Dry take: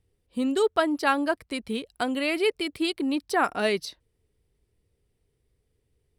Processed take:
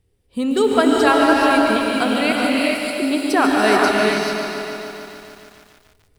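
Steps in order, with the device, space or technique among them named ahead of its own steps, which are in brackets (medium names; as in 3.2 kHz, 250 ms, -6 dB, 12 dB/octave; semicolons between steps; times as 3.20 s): 2.32–2.96 s: inverse Chebyshev high-pass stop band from 930 Hz, stop band 80 dB; saturated reverb return (on a send at -4 dB: reverberation RT60 2.2 s, pre-delay 100 ms + saturation -22 dBFS, distortion -13 dB); on the sum: gated-style reverb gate 460 ms rising, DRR -1.5 dB; bit-crushed delay 146 ms, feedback 80%, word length 8-bit, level -10.5 dB; trim +5.5 dB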